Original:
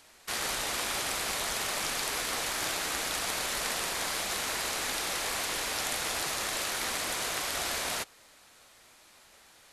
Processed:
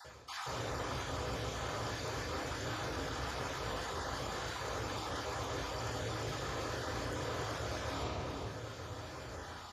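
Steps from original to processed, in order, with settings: random holes in the spectrogram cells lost 22%; treble shelf 7.1 kHz +11 dB; on a send: delay 404 ms -20.5 dB; on the sum: reverberation RT60 1.1 s, pre-delay 3 ms, DRR -9 dB; reverse; compression 5:1, threshold -40 dBFS, peak gain reduction 19.5 dB; reverse; high-pass 58 Hz; treble shelf 2.5 kHz -11 dB; trim +3.5 dB

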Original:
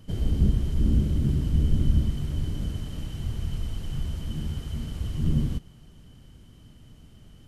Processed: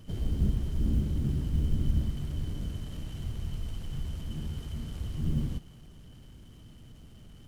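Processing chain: companding laws mixed up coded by mu; trim -6 dB

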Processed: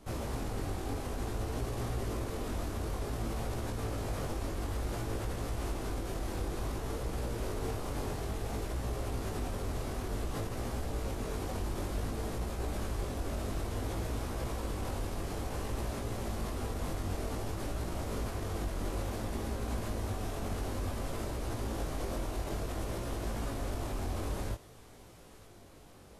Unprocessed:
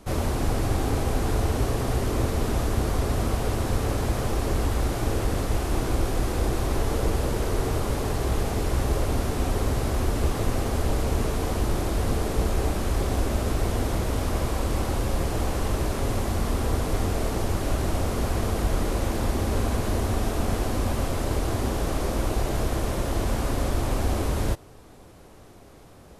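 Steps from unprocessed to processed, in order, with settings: feedback echo behind a high-pass 920 ms, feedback 68%, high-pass 2 kHz, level -20 dB; peak limiter -21 dBFS, peak gain reduction 11 dB; chorus 0.56 Hz, delay 17 ms, depth 4.3 ms; trim -3.5 dB

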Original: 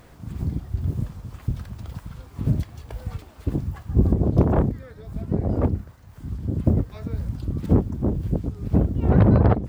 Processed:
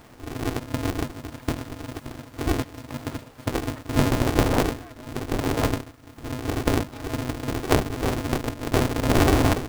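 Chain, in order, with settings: single-diode clipper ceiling -21 dBFS; 8.46–9.18 s: steep low-pass 680 Hz 48 dB/octave; polarity switched at an audio rate 190 Hz

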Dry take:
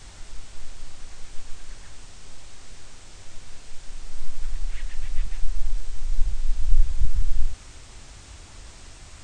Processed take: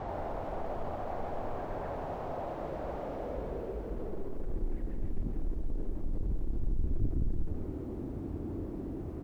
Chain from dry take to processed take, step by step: high-pass 220 Hz 6 dB/octave; hum notches 60/120/180/240/300/360/420/480/540 Hz; in parallel at -3 dB: peak limiter -35 dBFS, peak gain reduction 11 dB; on the sum: power-law waveshaper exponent 0.5; low-pass sweep 690 Hz -> 320 Hz, 3.03–4.77 s; 2.50–3.98 s: frequency shift -63 Hz; on a send: delay 168 ms -11 dB; on the sum: bit-crushed delay 84 ms, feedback 35%, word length 10-bit, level -12 dB

